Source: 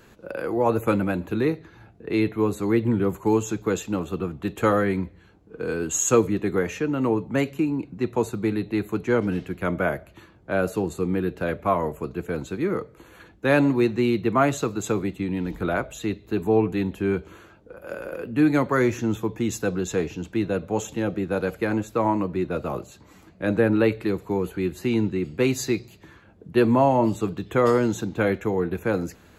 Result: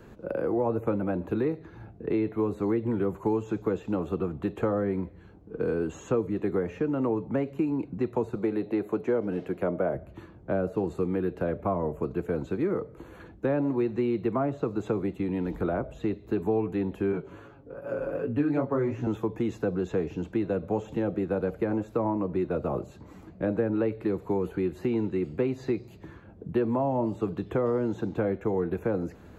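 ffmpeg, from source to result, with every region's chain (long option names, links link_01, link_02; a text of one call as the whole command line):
ffmpeg -i in.wav -filter_complex "[0:a]asettb=1/sr,asplit=3[link_01][link_02][link_03];[link_01]atrim=end=8.354[link_04];[link_02]atrim=start=8.35:end=9.95,asetpts=PTS-STARTPTS,afade=type=in:duration=0.004:curve=qsin,afade=type=out:start_time=1.596:duration=0.004:curve=qsin,highpass=frequency=250:poles=1,equalizer=frequency=570:width_type=o:width=1:gain=5.5[link_05];[link_03]atrim=start=9.946[link_06];[link_04][link_05]acrossfade=duration=0.004:curve1=hsin:curve2=qsin[link_07];[link_07][link_06]acrossfade=duration=0.004:curve1=qsin:curve2=hsin,asettb=1/sr,asplit=3[link_08][link_09][link_10];[link_08]atrim=end=17.124[link_11];[link_09]atrim=start=17.12:end=19.07,asetpts=PTS-STARTPTS,afade=type=in:duration=0.004:curve=qsin,afade=type=out:start_time=1.946:duration=0.004:curve=qsin,highshelf=frequency=7000:gain=-7.5,aecho=1:1:7.2:0.93,atrim=end_sample=85995,flanger=delay=16:depth=5.8:speed=2.6[link_12];[link_10]atrim=start=19.066[link_13];[link_11][link_12]acrossfade=duration=0.004:curve1=hsin:curve2=qsin[link_14];[link_14][link_13]acrossfade=duration=0.004:curve1=qsin:curve2=hsin,acrossover=split=3800[link_15][link_16];[link_16]acompressor=threshold=-50dB:ratio=4:attack=1:release=60[link_17];[link_15][link_17]amix=inputs=2:normalize=0,tiltshelf=frequency=1400:gain=7,acrossover=split=390|1100[link_18][link_19][link_20];[link_18]acompressor=threshold=-29dB:ratio=4[link_21];[link_19]acompressor=threshold=-27dB:ratio=4[link_22];[link_20]acompressor=threshold=-44dB:ratio=4[link_23];[link_21][link_22][link_23]amix=inputs=3:normalize=0,volume=-2dB" out.wav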